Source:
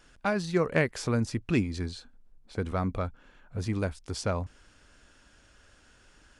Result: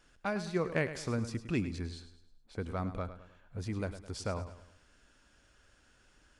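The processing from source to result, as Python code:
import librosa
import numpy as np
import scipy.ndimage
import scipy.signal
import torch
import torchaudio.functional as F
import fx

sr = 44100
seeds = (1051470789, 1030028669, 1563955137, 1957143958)

y = fx.echo_feedback(x, sr, ms=105, feedback_pct=42, wet_db=-12.0)
y = y * librosa.db_to_amplitude(-6.5)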